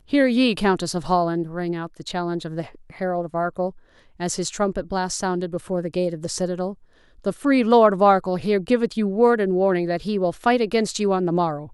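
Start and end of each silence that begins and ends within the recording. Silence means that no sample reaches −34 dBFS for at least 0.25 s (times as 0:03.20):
0:03.70–0:04.20
0:06.73–0:07.24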